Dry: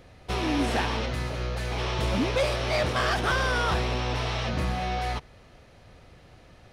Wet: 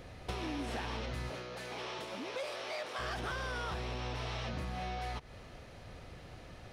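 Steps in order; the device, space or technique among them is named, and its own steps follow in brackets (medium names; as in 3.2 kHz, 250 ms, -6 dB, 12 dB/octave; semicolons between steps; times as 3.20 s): serial compression, peaks first (compression, threshold -33 dBFS, peak gain reduction 11.5 dB; compression 2:1, threshold -40 dBFS, peak gain reduction 5.5 dB); 1.29–2.98 s: high-pass 170 Hz -> 490 Hz 12 dB/octave; trim +1.5 dB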